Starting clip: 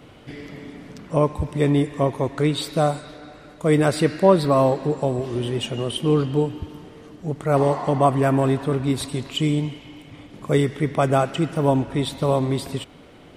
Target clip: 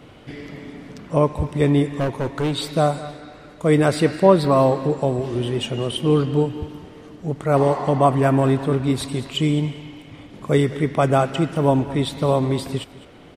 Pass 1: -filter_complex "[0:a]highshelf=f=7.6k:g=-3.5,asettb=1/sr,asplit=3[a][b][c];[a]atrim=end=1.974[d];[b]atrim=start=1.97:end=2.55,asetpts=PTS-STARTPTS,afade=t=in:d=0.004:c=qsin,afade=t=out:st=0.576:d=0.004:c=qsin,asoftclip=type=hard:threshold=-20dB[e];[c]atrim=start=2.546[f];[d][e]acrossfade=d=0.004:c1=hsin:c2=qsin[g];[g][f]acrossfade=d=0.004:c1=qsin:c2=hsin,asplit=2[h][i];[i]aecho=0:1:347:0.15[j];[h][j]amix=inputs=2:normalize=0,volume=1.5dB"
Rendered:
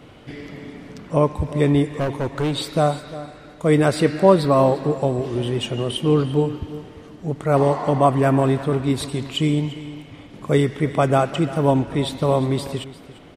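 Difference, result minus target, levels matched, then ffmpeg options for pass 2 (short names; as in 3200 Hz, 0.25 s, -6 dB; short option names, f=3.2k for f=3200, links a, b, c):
echo 0.139 s late
-filter_complex "[0:a]highshelf=f=7.6k:g=-3.5,asettb=1/sr,asplit=3[a][b][c];[a]atrim=end=1.974[d];[b]atrim=start=1.97:end=2.55,asetpts=PTS-STARTPTS,afade=t=in:d=0.004:c=qsin,afade=t=out:st=0.576:d=0.004:c=qsin,asoftclip=type=hard:threshold=-20dB[e];[c]atrim=start=2.546[f];[d][e]acrossfade=d=0.004:c1=hsin:c2=qsin[g];[g][f]acrossfade=d=0.004:c1=qsin:c2=hsin,asplit=2[h][i];[i]aecho=0:1:208:0.15[j];[h][j]amix=inputs=2:normalize=0,volume=1.5dB"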